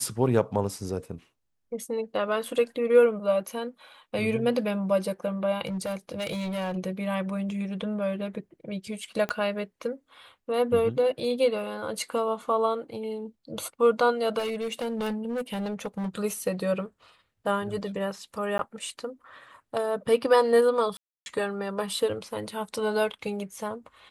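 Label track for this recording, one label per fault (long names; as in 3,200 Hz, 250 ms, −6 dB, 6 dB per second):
5.650000	6.780000	clipping −27 dBFS
9.290000	9.290000	click −16 dBFS
14.380000	16.150000	clipping −26.5 dBFS
18.580000	18.590000	drop-out
20.970000	21.260000	drop-out 291 ms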